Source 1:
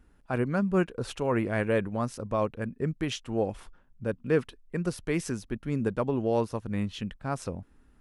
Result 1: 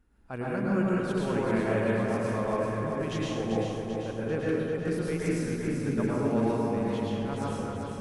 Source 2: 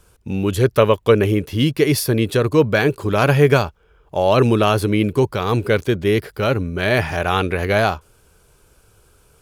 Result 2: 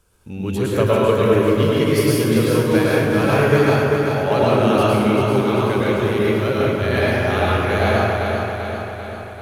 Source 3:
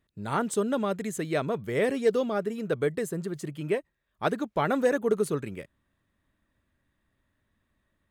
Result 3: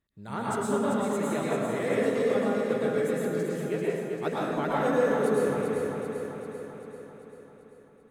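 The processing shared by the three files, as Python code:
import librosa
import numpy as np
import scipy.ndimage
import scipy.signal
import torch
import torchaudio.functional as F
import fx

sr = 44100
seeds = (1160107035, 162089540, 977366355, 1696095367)

p1 = x + fx.echo_feedback(x, sr, ms=391, feedback_pct=59, wet_db=-5.5, dry=0)
p2 = fx.rev_plate(p1, sr, seeds[0], rt60_s=1.6, hf_ratio=0.55, predelay_ms=95, drr_db=-6.0)
y = p2 * librosa.db_to_amplitude(-8.0)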